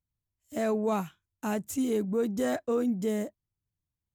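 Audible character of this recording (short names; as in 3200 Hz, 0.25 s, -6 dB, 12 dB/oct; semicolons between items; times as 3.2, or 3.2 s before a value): noise floor -89 dBFS; spectral tilt -4.5 dB/oct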